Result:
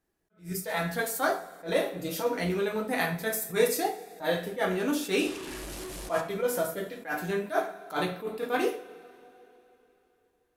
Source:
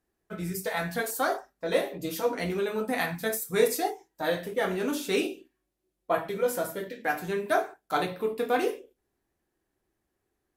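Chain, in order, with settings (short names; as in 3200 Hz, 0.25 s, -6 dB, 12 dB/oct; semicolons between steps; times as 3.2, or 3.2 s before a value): 5.19–6.21 delta modulation 64 kbps, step -33.5 dBFS; two-slope reverb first 0.38 s, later 3.3 s, from -19 dB, DRR 7.5 dB; attack slew limiter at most 210 dB/s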